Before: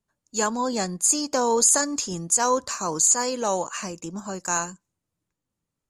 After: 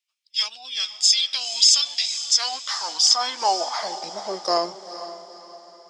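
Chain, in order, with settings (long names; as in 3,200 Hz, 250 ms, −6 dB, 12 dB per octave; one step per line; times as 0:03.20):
formants moved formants −5 semitones
high-pass filter sweep 2,600 Hz → 330 Hz, 0:01.91–0:04.82
feedback delay with all-pass diffusion 470 ms, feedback 44%, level −12 dB
level +2 dB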